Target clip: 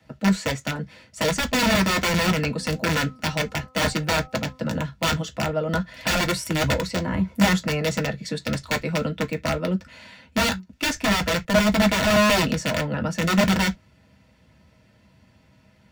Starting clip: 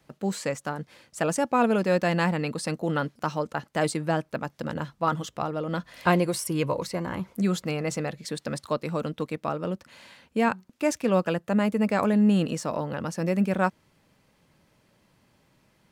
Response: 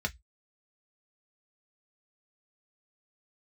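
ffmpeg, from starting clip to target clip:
-filter_complex "[0:a]asplit=3[a][b][c];[a]afade=t=out:st=2.45:d=0.02[d];[b]bandreject=f=257.2:t=h:w=4,bandreject=f=514.4:t=h:w=4,bandreject=f=771.6:t=h:w=4,bandreject=f=1.0288k:t=h:w=4,bandreject=f=1.286k:t=h:w=4,afade=t=in:st=2.45:d=0.02,afade=t=out:st=4.79:d=0.02[e];[c]afade=t=in:st=4.79:d=0.02[f];[d][e][f]amix=inputs=3:normalize=0,aeval=exprs='(mod(9.44*val(0)+1,2)-1)/9.44':c=same[g];[1:a]atrim=start_sample=2205,atrim=end_sample=3528[h];[g][h]afir=irnorm=-1:irlink=0"

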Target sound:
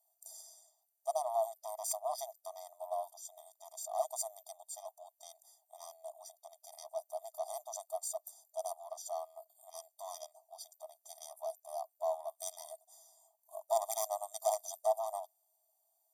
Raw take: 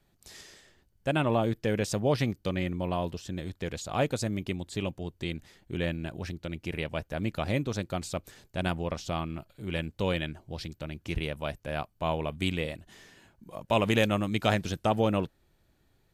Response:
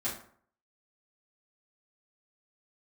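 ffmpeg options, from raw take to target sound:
-filter_complex "[0:a]aeval=exprs='0.316*(cos(1*acos(clip(val(0)/0.316,-1,1)))-cos(1*PI/2))+0.1*(cos(4*acos(clip(val(0)/0.316,-1,1)))-cos(4*PI/2))':c=same,acrossover=split=6800[a][b];[a]asuperpass=centerf=440:order=4:qfactor=1.9[c];[b]aeval=exprs='0.0266*(abs(mod(val(0)/0.0266+3,4)-2)-1)':c=same[d];[c][d]amix=inputs=2:normalize=0,afftfilt=real='re*eq(mod(floor(b*sr/1024/630),2),1)':imag='im*eq(mod(floor(b*sr/1024/630),2),1)':win_size=1024:overlap=0.75,volume=10dB"

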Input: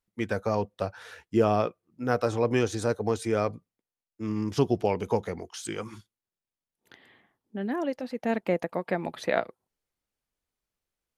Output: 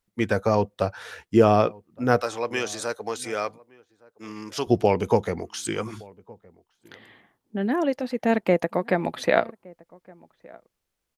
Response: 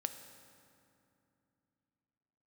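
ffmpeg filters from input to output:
-filter_complex "[0:a]asettb=1/sr,asplit=3[a][b][c];[a]atrim=end=2.224[d];[b]atrim=start=2.22:end=4.67,asetpts=PTS-STARTPTS,afade=t=in:d=0.004:c=qsin,afade=t=out:st=2.446:d=0.004:c=qsin,highpass=f=1.3k:p=1[e];[c]atrim=start=4.666[f];[d][e]acrossfade=d=0.004:c1=hsin:c2=qsin[g];[g][f]acrossfade=d=0.004:c1=qsin:c2=hsin,asplit=2[h][i];[i]adelay=1166,volume=-24dB,highshelf=f=4k:g=-26.2[j];[h][j]amix=inputs=2:normalize=0,volume=6dB"

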